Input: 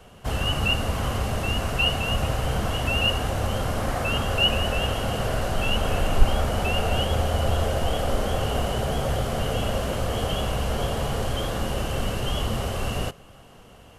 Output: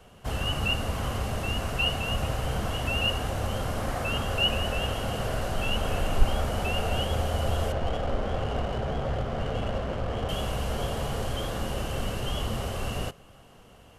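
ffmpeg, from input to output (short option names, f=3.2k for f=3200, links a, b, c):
-filter_complex "[0:a]asettb=1/sr,asplit=3[a][b][c];[a]atrim=end=7.724[d];[b]atrim=start=7.72:end=10.29,asetpts=PTS-STARTPTS,afade=t=in:d=0.004:c=qsin,afade=t=out:st=2.566:d=0.004:c=qsin,adynamicsmooth=sensitivity=3.5:basefreq=1.3k[e];[c]atrim=start=10.286[f];[d][e]acrossfade=d=0.004:c1=hsin:c2=qsin[g];[g][f]acrossfade=d=0.004:c1=qsin:c2=hsin,volume=-4dB"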